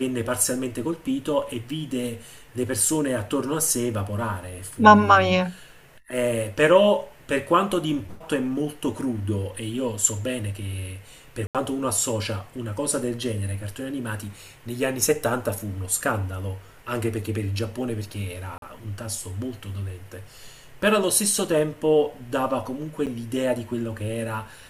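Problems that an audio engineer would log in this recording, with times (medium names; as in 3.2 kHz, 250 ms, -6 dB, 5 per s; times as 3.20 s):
11.47–11.55 s: dropout 77 ms
18.58–18.62 s: dropout 42 ms
23.06–23.07 s: dropout 7.8 ms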